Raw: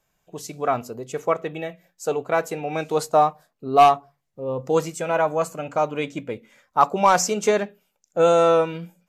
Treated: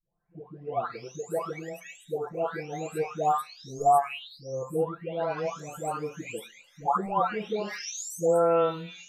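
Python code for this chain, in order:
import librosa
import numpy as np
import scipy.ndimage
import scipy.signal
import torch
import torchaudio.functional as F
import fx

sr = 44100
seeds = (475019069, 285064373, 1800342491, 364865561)

y = fx.spec_delay(x, sr, highs='late', ms=924)
y = F.gain(torch.from_numpy(y), -5.5).numpy()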